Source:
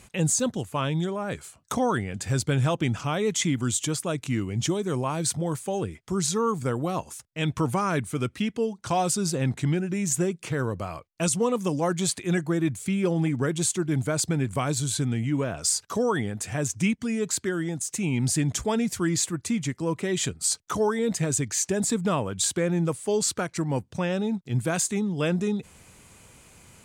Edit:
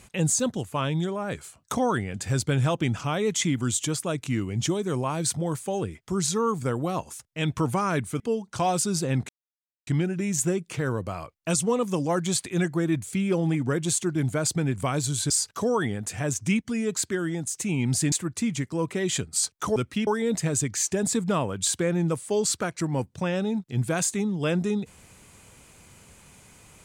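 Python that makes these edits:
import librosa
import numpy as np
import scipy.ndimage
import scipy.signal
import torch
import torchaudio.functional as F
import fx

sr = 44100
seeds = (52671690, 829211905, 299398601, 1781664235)

y = fx.edit(x, sr, fx.move(start_s=8.2, length_s=0.31, to_s=20.84),
    fx.insert_silence(at_s=9.6, length_s=0.58),
    fx.cut(start_s=15.03, length_s=0.61),
    fx.cut(start_s=18.46, length_s=0.74), tone=tone)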